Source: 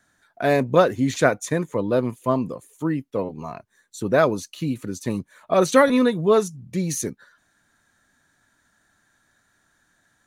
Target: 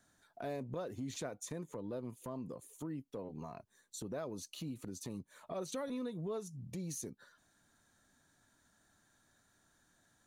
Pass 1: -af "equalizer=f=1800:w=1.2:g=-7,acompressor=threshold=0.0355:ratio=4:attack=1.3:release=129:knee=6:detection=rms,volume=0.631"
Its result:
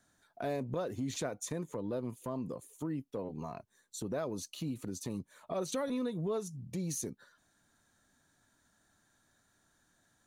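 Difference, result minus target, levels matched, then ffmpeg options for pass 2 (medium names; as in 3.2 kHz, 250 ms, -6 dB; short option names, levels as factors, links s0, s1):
compression: peak gain reduction -5.5 dB
-af "equalizer=f=1800:w=1.2:g=-7,acompressor=threshold=0.0158:ratio=4:attack=1.3:release=129:knee=6:detection=rms,volume=0.631"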